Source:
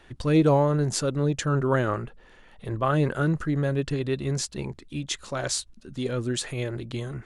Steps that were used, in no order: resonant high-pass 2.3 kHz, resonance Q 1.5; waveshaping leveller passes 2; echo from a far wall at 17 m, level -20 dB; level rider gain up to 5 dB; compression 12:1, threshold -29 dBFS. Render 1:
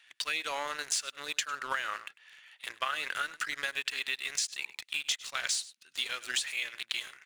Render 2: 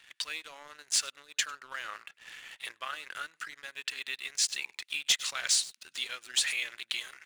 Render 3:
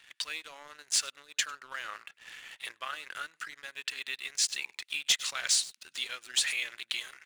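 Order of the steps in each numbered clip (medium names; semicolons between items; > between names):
resonant high-pass > waveshaping leveller > echo from a far wall > level rider > compression; echo from a far wall > level rider > compression > resonant high-pass > waveshaping leveller; level rider > echo from a far wall > compression > resonant high-pass > waveshaping leveller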